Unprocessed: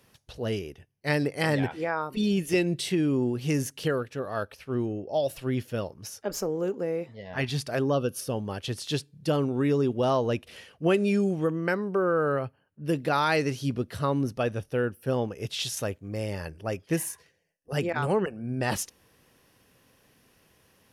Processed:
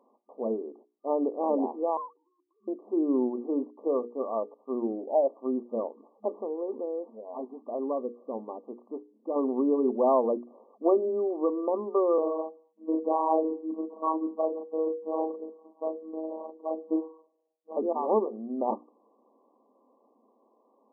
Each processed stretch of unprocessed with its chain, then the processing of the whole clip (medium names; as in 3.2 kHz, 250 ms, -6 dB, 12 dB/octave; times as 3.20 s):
1.97–2.68 s: formants replaced by sine waves + compressor with a negative ratio -30 dBFS + high-pass 1.2 kHz 24 dB/octave
6.29–9.36 s: low-pass 3.2 kHz + compression 1.5:1, threshold -38 dBFS
12.18–17.77 s: doubling 37 ms -3 dB + robot voice 159 Hz + feedback delay 75 ms, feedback 39%, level -23.5 dB
whole clip: FFT band-pass 210–1200 Hz; peaking EQ 740 Hz +3 dB 1.5 oct; hum notches 60/120/180/240/300/360/420/480 Hz